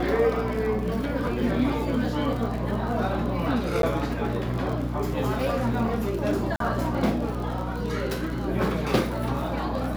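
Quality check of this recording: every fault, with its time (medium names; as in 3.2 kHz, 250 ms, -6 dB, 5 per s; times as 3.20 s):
crackle 49 per s -31 dBFS
hum 60 Hz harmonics 5 -31 dBFS
3.82–3.83 s: dropout 12 ms
6.56–6.60 s: dropout 43 ms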